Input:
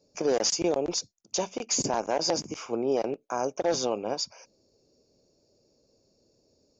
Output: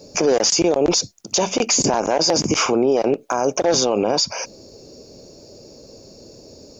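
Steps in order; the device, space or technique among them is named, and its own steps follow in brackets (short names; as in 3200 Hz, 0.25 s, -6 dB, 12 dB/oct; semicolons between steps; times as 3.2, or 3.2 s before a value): loud club master (compressor 1.5:1, threshold -35 dBFS, peak gain reduction 5.5 dB; hard clip -21 dBFS, distortion -41 dB; maximiser +32 dB); gain -8 dB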